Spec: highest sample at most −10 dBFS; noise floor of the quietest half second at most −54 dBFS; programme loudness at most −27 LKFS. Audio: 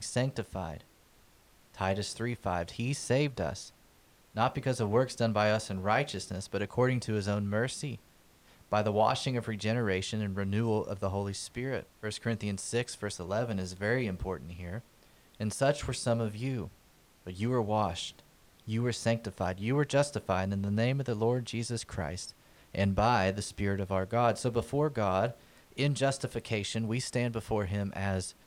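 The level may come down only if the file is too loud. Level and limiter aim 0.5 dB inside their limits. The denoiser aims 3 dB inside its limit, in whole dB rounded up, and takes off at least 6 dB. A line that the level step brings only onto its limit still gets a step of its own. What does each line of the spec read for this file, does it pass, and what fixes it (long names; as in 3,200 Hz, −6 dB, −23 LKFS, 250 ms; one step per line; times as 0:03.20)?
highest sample −13.0 dBFS: in spec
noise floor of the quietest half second −62 dBFS: in spec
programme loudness −32.0 LKFS: in spec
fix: no processing needed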